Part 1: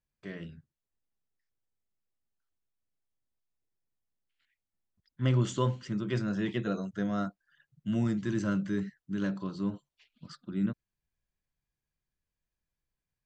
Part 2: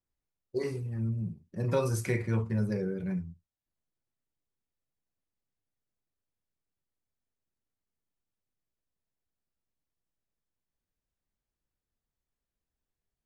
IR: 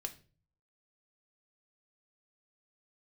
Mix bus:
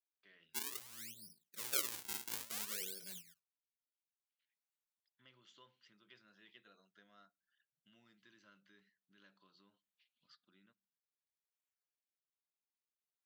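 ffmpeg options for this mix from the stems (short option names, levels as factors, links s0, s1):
-filter_complex "[0:a]lowpass=f=4100:w=0.5412,lowpass=f=4100:w=1.3066,acompressor=threshold=0.0126:ratio=2.5,volume=0.501,asplit=2[s0][s1];[s1]volume=0.211[s2];[1:a]highpass=160,acrusher=samples=42:mix=1:aa=0.000001:lfo=1:lforange=67.2:lforate=0.58,volume=1.41[s3];[2:a]atrim=start_sample=2205[s4];[s2][s4]afir=irnorm=-1:irlink=0[s5];[s0][s3][s5]amix=inputs=3:normalize=0,aderivative"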